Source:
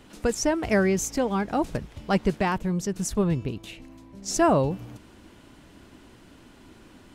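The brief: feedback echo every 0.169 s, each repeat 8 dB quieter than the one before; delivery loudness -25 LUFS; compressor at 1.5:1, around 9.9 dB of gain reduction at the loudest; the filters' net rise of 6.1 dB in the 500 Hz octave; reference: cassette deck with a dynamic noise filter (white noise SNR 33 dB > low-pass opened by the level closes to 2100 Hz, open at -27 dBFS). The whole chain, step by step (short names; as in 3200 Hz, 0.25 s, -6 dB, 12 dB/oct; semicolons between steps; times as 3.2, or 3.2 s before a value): bell 500 Hz +8 dB; compressor 1.5:1, threshold -41 dBFS; feedback echo 0.169 s, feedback 40%, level -8 dB; white noise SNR 33 dB; low-pass opened by the level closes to 2100 Hz, open at -27 dBFS; gain +5.5 dB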